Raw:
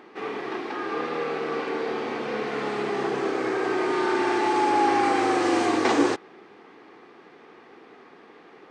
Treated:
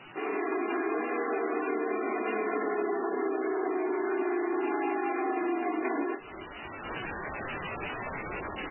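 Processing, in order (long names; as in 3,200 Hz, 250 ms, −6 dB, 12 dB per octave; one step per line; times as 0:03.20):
wavefolder on the positive side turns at −16.5 dBFS
high-pass filter 180 Hz 24 dB per octave
comb filter 2.9 ms, depth 93%
noise gate −43 dBFS, range −10 dB
background noise violet −41 dBFS
ambience of single reflections 26 ms −15 dB, 46 ms −13.5 dB
automatic gain control gain up to 15 dB
0:02.49–0:04.64: low-pass filter 2,200 Hz 12 dB per octave
downward compressor 10 to 1, threshold −22 dBFS, peak gain reduction 14.5 dB
bad sample-rate conversion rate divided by 3×, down none, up hold
level −5 dB
MP3 8 kbit/s 16,000 Hz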